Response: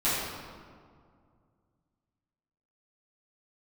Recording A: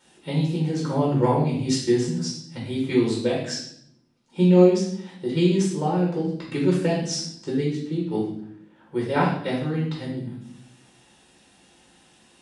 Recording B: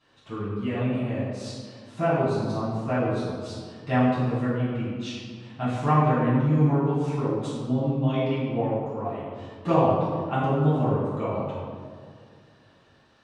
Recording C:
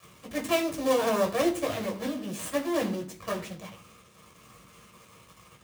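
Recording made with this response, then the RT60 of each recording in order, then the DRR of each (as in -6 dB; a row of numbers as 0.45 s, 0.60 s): B; 0.70 s, 2.1 s, 0.45 s; -4.5 dB, -13.0 dB, 0.0 dB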